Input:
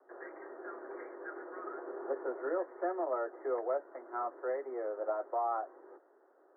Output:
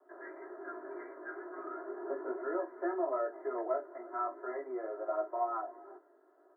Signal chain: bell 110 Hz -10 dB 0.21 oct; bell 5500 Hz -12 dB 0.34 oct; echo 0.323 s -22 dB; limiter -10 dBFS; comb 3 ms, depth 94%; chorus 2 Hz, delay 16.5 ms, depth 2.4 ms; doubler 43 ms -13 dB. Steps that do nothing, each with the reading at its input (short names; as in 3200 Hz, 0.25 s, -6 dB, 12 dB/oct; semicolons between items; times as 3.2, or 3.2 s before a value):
bell 110 Hz: input band starts at 240 Hz; bell 5500 Hz: input band ends at 1900 Hz; limiter -10 dBFS: input peak -22.5 dBFS